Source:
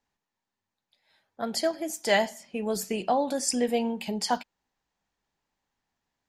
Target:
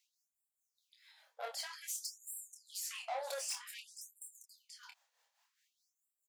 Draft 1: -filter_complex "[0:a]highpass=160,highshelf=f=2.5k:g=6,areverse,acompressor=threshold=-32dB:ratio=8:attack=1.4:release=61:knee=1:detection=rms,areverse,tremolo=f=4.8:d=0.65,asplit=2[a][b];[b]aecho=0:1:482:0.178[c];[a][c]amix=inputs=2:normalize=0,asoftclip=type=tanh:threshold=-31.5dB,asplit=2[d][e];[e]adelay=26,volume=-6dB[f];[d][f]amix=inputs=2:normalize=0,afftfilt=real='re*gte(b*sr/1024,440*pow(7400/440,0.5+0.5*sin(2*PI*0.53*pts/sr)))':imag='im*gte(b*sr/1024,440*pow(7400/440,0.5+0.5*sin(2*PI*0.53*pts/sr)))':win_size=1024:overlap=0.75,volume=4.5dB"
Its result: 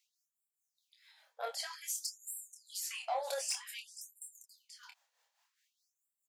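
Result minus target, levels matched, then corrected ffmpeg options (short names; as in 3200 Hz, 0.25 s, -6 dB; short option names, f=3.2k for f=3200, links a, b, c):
soft clip: distortion -10 dB
-filter_complex "[0:a]highpass=160,highshelf=f=2.5k:g=6,areverse,acompressor=threshold=-32dB:ratio=8:attack=1.4:release=61:knee=1:detection=rms,areverse,tremolo=f=4.8:d=0.65,asplit=2[a][b];[b]aecho=0:1:482:0.178[c];[a][c]amix=inputs=2:normalize=0,asoftclip=type=tanh:threshold=-40dB,asplit=2[d][e];[e]adelay=26,volume=-6dB[f];[d][f]amix=inputs=2:normalize=0,afftfilt=real='re*gte(b*sr/1024,440*pow(7400/440,0.5+0.5*sin(2*PI*0.53*pts/sr)))':imag='im*gte(b*sr/1024,440*pow(7400/440,0.5+0.5*sin(2*PI*0.53*pts/sr)))':win_size=1024:overlap=0.75,volume=4.5dB"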